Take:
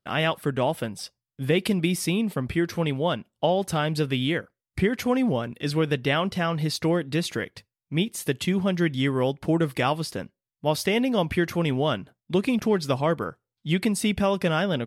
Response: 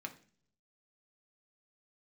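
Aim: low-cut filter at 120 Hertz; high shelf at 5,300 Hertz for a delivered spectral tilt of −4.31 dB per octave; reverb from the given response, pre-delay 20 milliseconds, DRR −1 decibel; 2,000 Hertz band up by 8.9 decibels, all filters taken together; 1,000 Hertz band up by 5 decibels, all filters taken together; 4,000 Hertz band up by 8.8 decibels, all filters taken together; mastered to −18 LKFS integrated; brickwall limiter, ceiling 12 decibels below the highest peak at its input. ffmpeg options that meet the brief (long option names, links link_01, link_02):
-filter_complex "[0:a]highpass=120,equalizer=frequency=1000:width_type=o:gain=4,equalizer=frequency=2000:width_type=o:gain=7.5,equalizer=frequency=4000:width_type=o:gain=6.5,highshelf=frequency=5300:gain=5,alimiter=limit=-13.5dB:level=0:latency=1,asplit=2[link_01][link_02];[1:a]atrim=start_sample=2205,adelay=20[link_03];[link_02][link_03]afir=irnorm=-1:irlink=0,volume=2dB[link_04];[link_01][link_04]amix=inputs=2:normalize=0,volume=4dB"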